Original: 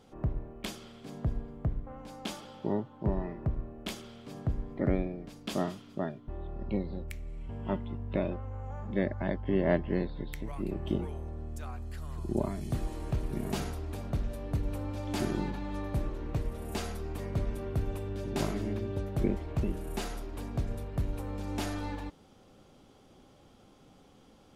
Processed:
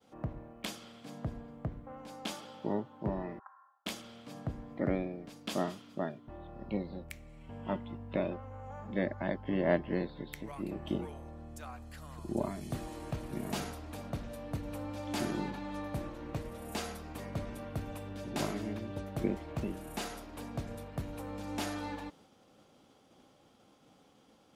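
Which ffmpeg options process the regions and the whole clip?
-filter_complex "[0:a]asettb=1/sr,asplit=3[a][b][c];[a]atrim=end=3.394[d];[b]atrim=start=3.39:end=3.86,asetpts=PTS-STARTPTS,afade=t=in:d=0.004:c=qsin,afade=t=out:st=0.466:d=0.004:c=qsin,asuperpass=centerf=1200:order=8:qfactor=1.6,aecho=1:1:3.8:0.91,atrim=end_sample=20727[e];[c]atrim=start=3.856[f];[d][e]acrossfade=d=0.004:c1=hsin:c2=qsin[g];[g][f]acrossfade=d=0.004:c1=qsin:c2=hsin,highpass=f=210:p=1,agate=range=-33dB:threshold=-57dB:ratio=3:detection=peak,bandreject=f=390:w=12"

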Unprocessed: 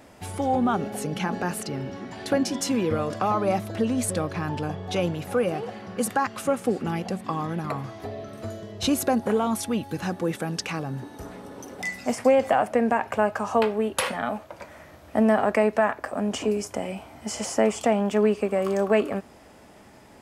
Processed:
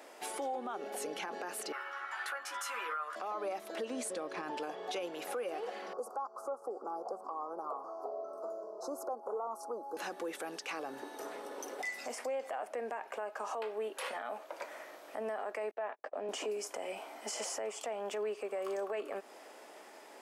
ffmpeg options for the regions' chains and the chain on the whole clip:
-filter_complex "[0:a]asettb=1/sr,asplit=3[a][b][c];[a]atrim=end=1.724[d];[b]atrim=start=1.72:end=3.16,asetpts=PTS-STARTPTS,afade=t=in:d=0.004:c=qsin,afade=t=out:st=1.436:d=0.004:c=qsin,highpass=f=1.3k:t=q:w=4.6,equalizer=f=5.1k:t=o:w=1.6:g=-10.5,asplit=2[e][f];[f]adelay=13,volume=-4.5dB[g];[e][g]amix=inputs=2:normalize=0,atrim=end_sample=63504[h];[c]atrim=start=3.156[i];[d][h]acrossfade=d=0.004:c1=hsin:c2=qsin[j];[j][i]acrossfade=d=0.004:c1=qsin:c2=hsin,asettb=1/sr,asplit=3[k][l][m];[k]atrim=end=3.904[n];[l]atrim=start=3.9:end=4.51,asetpts=PTS-STARTPTS,afade=t=in:d=0.004:c=qsin,afade=t=out:st=0.606:d=0.004:c=qsin,lowpass=f=11k:w=0.5412,lowpass=f=11k:w=1.3066,equalizer=f=120:w=0.41:g=6.5[o];[m]atrim=start=4.506[p];[n][o]acrossfade=d=0.004:c1=hsin:c2=qsin[q];[q][p]acrossfade=d=0.004:c1=qsin:c2=hsin,asettb=1/sr,asplit=3[r][s][t];[r]atrim=end=5.934[u];[s]atrim=start=5.93:end=9.97,asetpts=PTS-STARTPTS,afade=t=in:d=0.004:c=qsin,afade=t=out:st=4.036:d=0.004:c=qsin,acrossover=split=420 2200:gain=0.2 1 0.126[v][w][x];[v][w][x]amix=inputs=3:normalize=0,acompressor=mode=upward:threshold=-37dB:ratio=2.5:attack=3.2:release=140:knee=2.83:detection=peak,asuperstop=centerf=2500:order=12:qfactor=0.73[y];[t]atrim=start=9.966[z];[u][y]acrossfade=d=0.004:c1=hsin:c2=qsin[aa];[aa][z]acrossfade=d=0.004:c1=qsin:c2=hsin,asettb=1/sr,asplit=3[ab][ac][ad];[ab]atrim=end=15.714[ae];[ac]atrim=start=15.71:end=16.29,asetpts=PTS-STARTPTS,afade=t=in:d=0.004:c=qsin,afade=t=out:st=0.576:d=0.004:c=qsin,agate=range=-39dB:threshold=-34dB:ratio=16:release=100:detection=peak,highpass=240,lowpass=3.2k,equalizer=f=1.4k:w=1.1:g=-7.5[af];[ad]atrim=start=16.286[ag];[ae][af]acrossfade=d=0.004:c1=hsin:c2=qsin[ah];[ah][ag]acrossfade=d=0.004:c1=qsin:c2=hsin,highpass=f=360:w=0.5412,highpass=f=360:w=1.3066,acompressor=threshold=-34dB:ratio=4,alimiter=level_in=5dB:limit=-24dB:level=0:latency=1:release=17,volume=-5dB,volume=-1dB"

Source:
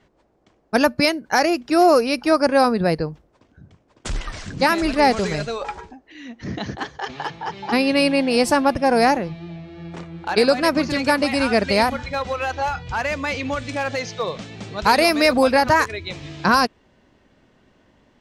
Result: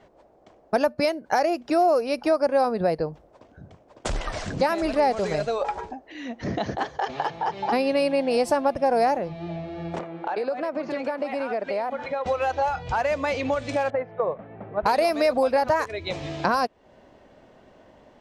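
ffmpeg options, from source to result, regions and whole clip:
-filter_complex "[0:a]asettb=1/sr,asplit=3[a][b][c];[a]atrim=end=9.994[d];[b]atrim=start=9.99:end=12.26,asetpts=PTS-STARTPTS,afade=t=in:d=0.004:c=qsin,afade=t=out:st=2.266:d=0.004:c=qsin,highpass=83,acrossover=split=200 3100:gain=0.126 1 0.224[e][f][g];[e][f][g]amix=inputs=3:normalize=0,acompressor=threshold=-32dB:ratio=3:attack=3.2:release=140:knee=1:detection=peak[h];[c]atrim=start=12.256[i];[d][h]acrossfade=d=0.004:c1=hsin:c2=qsin[j];[j][i]acrossfade=d=0.004:c1=qsin:c2=hsin,asettb=1/sr,asplit=3[k][l][m];[k]atrim=end=13.904[n];[l]atrim=start=13.9:end=14.86,asetpts=PTS-STARTPTS,afade=t=in:d=0.004:c=qsin,afade=t=out:st=0.956:d=0.004:c=qsin,lowpass=f=1.8k:w=0.5412,lowpass=f=1.8k:w=1.3066,agate=range=-8dB:threshold=-30dB:ratio=16:release=100:detection=peak[o];[m]atrim=start=14.856[p];[n][o]acrossfade=d=0.004:c1=hsin:c2=qsin[q];[q][p]acrossfade=d=0.004:c1=qsin:c2=hsin,equalizer=f=640:w=1.1:g=11,acompressor=threshold=-25dB:ratio=2.5"

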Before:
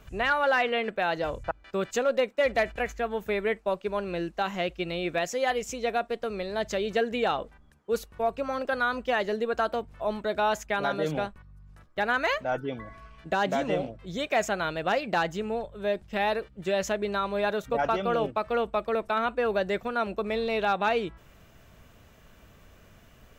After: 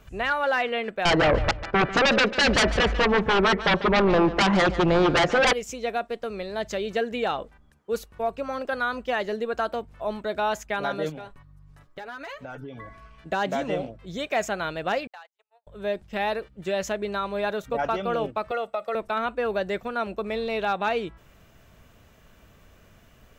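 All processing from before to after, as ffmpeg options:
-filter_complex "[0:a]asettb=1/sr,asplit=3[a][b][c];[a]atrim=end=1.054[d];[b]atrim=start=1.05:end=5.53,asetpts=PTS-STARTPTS,afade=t=in:d=0.004:c=qsin,afade=t=out:st=4.476:d=0.004:c=qsin,lowpass=1.4k,aeval=exprs='0.158*sin(PI/2*5.01*val(0)/0.158)':c=same,aecho=1:1:145|290|435:0.2|0.0499|0.0125,atrim=end_sample=197568[e];[c]atrim=start=5.526[f];[d][e]acrossfade=d=0.004:c1=hsin:c2=qsin[g];[g][f]acrossfade=d=0.004:c1=qsin:c2=hsin,asettb=1/sr,asplit=3[h][i][j];[h]atrim=end=11.094[k];[i]atrim=start=11.09:end=12.87,asetpts=PTS-STARTPTS,afade=t=in:d=0.004:c=qsin,afade=t=out:st=1.776:d=0.004:c=qsin,asoftclip=type=hard:threshold=-19.5dB,aecho=1:1:7.1:0.64,atrim=end_sample=78498,acompressor=threshold=-34dB:ratio=12:attack=3.2:release=140:knee=1:detection=peak[l];[j]atrim=start=12.866[m];[k][l]acrossfade=d=0.004:c1=hsin:c2=qsin[n];[n][m]acrossfade=d=0.004:c1=qsin:c2=hsin,asettb=1/sr,asplit=3[o][p][q];[o]atrim=end=15.074[r];[p]atrim=start=15.07:end=15.67,asetpts=PTS-STARTPTS,afade=t=in:d=0.004:c=qsin,afade=t=out:st=0.596:d=0.004:c=qsin,agate=range=-51dB:threshold=-26dB:ratio=16:release=100:detection=peak,highpass=f=700:w=0.5412,highpass=f=700:w=1.3066,acompressor=threshold=-42dB:ratio=6:attack=3.2:release=140:knee=1:detection=peak[s];[q]atrim=start=15.666[t];[r][s]acrossfade=d=0.004:c1=hsin:c2=qsin[u];[u][t]acrossfade=d=0.004:c1=qsin:c2=hsin,asettb=1/sr,asplit=3[v][w][x];[v]atrim=end=18.514[y];[w]atrim=start=18.51:end=18.95,asetpts=PTS-STARTPTS,afade=t=in:d=0.004:c=qsin,afade=t=out:st=0.436:d=0.004:c=qsin,highpass=320,aecho=1:1:1.5:0.74,atrim=end_sample=19404,acompressor=threshold=-23dB:ratio=6:attack=3.2:release=140:knee=1:detection=peak[z];[x]atrim=start=18.946[aa];[y][z]acrossfade=d=0.004:c1=hsin:c2=qsin[ab];[ab][aa]acrossfade=d=0.004:c1=qsin:c2=hsin"

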